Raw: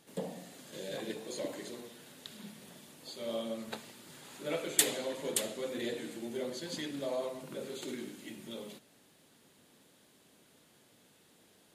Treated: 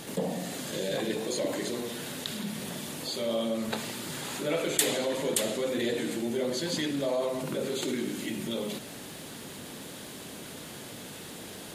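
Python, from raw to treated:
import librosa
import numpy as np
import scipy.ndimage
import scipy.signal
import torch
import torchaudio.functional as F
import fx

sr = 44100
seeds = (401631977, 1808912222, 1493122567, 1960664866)

y = fx.low_shelf(x, sr, hz=140.0, db=4.0)
y = fx.env_flatten(y, sr, amount_pct=50)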